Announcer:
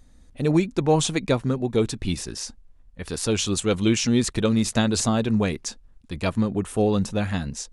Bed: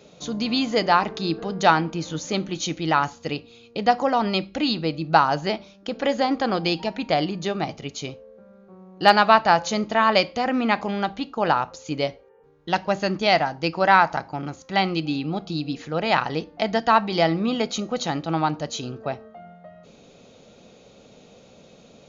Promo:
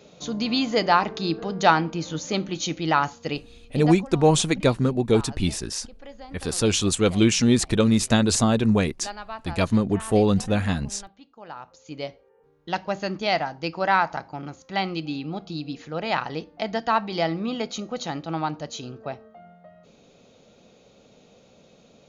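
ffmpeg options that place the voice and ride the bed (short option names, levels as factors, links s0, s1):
-filter_complex "[0:a]adelay=3350,volume=1.26[s0];[1:a]volume=6.31,afade=t=out:st=3.36:d=0.7:silence=0.0944061,afade=t=in:st=11.48:d=0.9:silence=0.149624[s1];[s0][s1]amix=inputs=2:normalize=0"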